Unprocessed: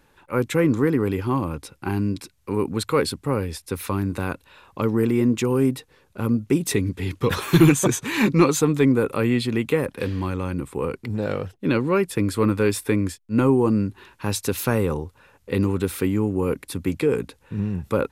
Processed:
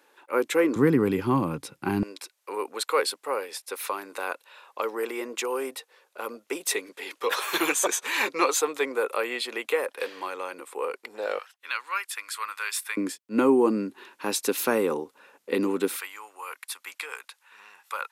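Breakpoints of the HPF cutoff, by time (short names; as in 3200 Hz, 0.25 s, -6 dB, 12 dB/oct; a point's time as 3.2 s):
HPF 24 dB/oct
330 Hz
from 0.76 s 130 Hz
from 2.03 s 490 Hz
from 11.39 s 1100 Hz
from 12.97 s 260 Hz
from 15.96 s 950 Hz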